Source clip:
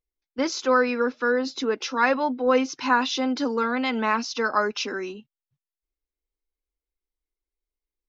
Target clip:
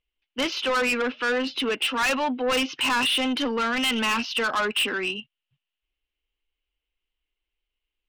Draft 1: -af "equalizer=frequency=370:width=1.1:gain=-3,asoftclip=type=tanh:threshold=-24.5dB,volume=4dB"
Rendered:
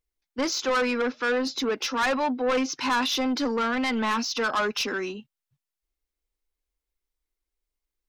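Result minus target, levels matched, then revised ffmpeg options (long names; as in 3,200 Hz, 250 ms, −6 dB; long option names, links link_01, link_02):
4,000 Hz band −3.5 dB
-af "lowpass=frequency=2900:width_type=q:width=8.1,equalizer=frequency=370:width=1.1:gain=-3,asoftclip=type=tanh:threshold=-24.5dB,volume=4dB"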